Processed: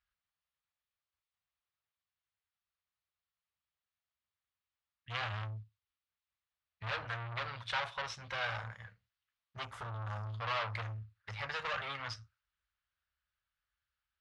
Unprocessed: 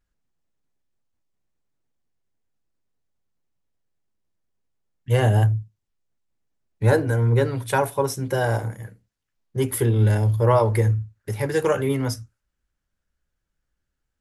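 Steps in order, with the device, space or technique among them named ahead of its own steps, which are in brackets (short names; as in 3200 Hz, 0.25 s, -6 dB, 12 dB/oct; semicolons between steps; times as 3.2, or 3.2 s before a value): scooped metal amplifier (tube stage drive 27 dB, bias 0.6; speaker cabinet 88–4100 Hz, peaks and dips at 130 Hz -9 dB, 220 Hz -4 dB, 400 Hz -8 dB, 1200 Hz +6 dB; passive tone stack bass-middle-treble 10-0-10); 9.65–10.27 band shelf 3000 Hz -12 dB; gain +4.5 dB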